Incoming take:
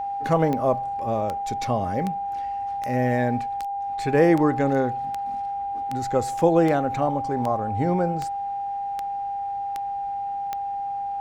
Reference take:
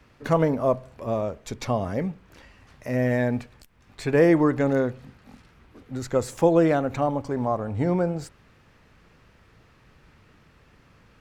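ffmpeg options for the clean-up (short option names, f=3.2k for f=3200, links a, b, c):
-af "adeclick=t=4,bandreject=f=800:w=30"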